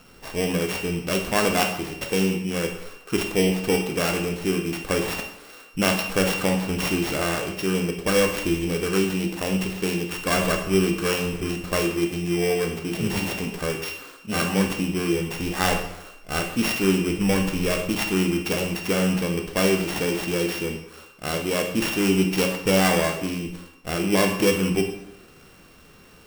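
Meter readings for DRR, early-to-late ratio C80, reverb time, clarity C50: 3.5 dB, 9.5 dB, 0.80 s, 7.0 dB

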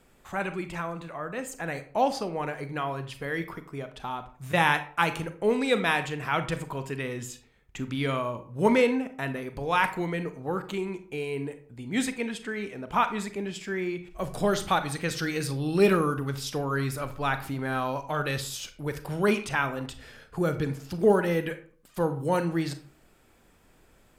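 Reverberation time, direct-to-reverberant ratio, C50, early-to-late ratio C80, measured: 0.45 s, 9.5 dB, 12.0 dB, 17.0 dB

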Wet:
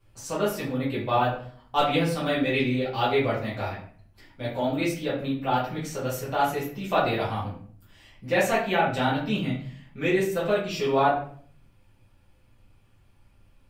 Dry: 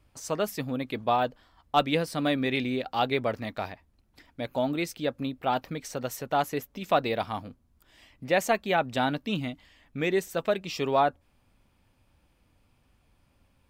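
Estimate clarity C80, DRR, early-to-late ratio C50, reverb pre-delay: 9.5 dB, -9.5 dB, 5.0 dB, 5 ms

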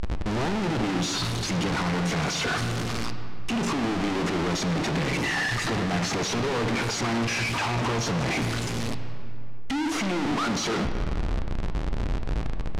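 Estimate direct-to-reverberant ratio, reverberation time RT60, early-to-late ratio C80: 7.0 dB, 2.5 s, 8.5 dB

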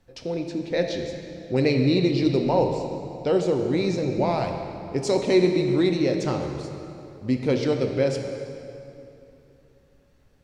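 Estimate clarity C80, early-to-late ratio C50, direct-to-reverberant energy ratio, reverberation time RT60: 5.5 dB, 5.0 dB, 3.5 dB, 2.9 s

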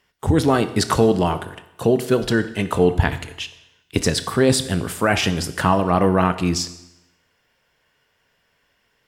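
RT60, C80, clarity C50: 0.90 s, 15.5 dB, 13.5 dB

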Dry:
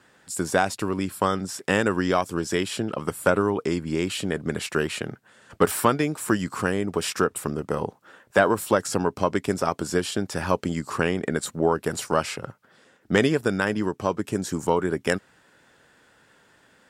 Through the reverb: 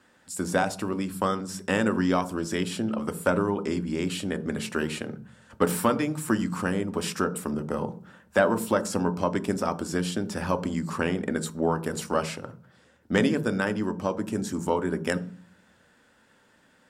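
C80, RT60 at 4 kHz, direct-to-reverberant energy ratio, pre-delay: 21.0 dB, 0.40 s, 10.0 dB, 3 ms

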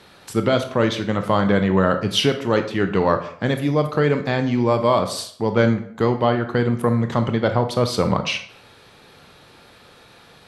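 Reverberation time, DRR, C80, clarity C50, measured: 0.60 s, 7.0 dB, 14.0 dB, 10.5 dB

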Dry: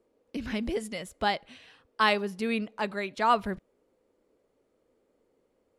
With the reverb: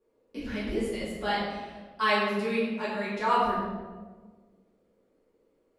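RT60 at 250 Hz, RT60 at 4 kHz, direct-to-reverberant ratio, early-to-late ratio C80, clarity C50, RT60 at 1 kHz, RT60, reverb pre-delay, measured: 1.9 s, 0.85 s, -10.0 dB, 2.5 dB, -0.5 dB, 1.2 s, 1.4 s, 4 ms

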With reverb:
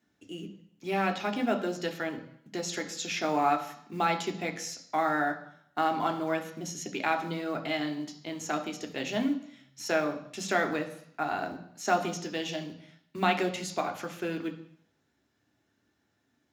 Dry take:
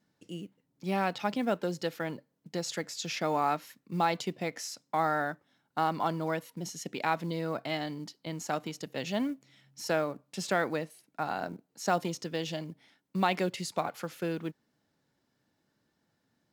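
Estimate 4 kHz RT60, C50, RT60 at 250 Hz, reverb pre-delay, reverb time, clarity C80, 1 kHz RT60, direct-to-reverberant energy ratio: 0.70 s, 12.0 dB, 0.65 s, 3 ms, 0.70 s, 14.5 dB, 0.70 s, 4.5 dB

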